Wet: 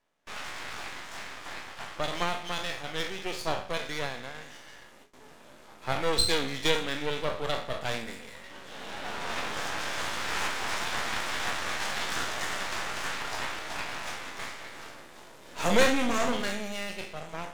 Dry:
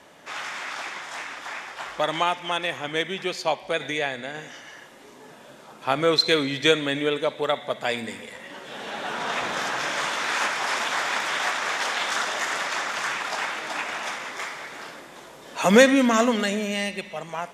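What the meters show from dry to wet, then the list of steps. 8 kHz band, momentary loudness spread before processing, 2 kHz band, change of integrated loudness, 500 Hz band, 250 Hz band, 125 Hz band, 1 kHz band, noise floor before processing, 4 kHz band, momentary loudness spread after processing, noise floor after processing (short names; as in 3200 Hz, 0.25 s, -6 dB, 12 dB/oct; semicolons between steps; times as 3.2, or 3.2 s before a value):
-4.0 dB, 16 LU, -6.5 dB, -7.0 dB, -8.0 dB, -9.5 dB, -4.0 dB, -6.5 dB, -47 dBFS, -5.0 dB, 16 LU, -52 dBFS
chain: spectral trails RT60 0.49 s; half-wave rectifier; gate with hold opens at -36 dBFS; gain -3.5 dB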